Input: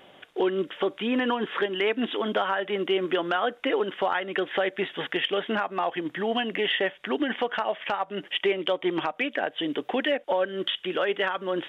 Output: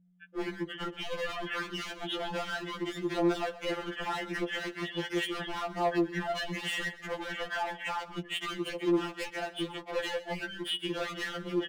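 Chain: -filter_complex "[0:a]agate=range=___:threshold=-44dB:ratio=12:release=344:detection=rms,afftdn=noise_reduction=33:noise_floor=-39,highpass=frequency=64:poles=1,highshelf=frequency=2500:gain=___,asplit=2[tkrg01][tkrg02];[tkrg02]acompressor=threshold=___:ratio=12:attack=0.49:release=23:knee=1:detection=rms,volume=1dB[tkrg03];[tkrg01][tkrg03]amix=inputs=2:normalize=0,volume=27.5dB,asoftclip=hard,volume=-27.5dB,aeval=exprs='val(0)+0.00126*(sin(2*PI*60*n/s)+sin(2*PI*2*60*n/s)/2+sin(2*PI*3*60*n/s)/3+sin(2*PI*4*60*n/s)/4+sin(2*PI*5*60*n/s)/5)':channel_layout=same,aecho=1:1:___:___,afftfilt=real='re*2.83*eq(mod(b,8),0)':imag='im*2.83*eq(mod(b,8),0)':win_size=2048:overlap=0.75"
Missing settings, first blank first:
-14dB, -5, -36dB, 131, 0.15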